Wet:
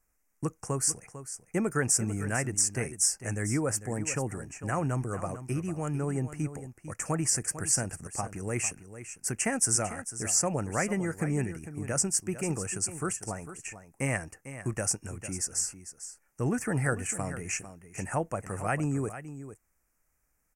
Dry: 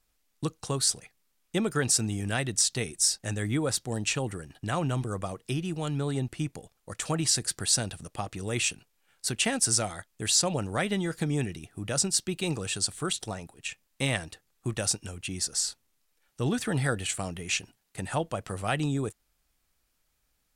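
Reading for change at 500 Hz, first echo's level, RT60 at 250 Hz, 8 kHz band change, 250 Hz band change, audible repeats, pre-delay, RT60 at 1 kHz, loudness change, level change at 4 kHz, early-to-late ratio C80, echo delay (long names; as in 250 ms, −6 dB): −0.5 dB, −12.5 dB, no reverb audible, −0.5 dB, −1.0 dB, 1, no reverb audible, no reverb audible, −1.5 dB, −10.5 dB, no reverb audible, 449 ms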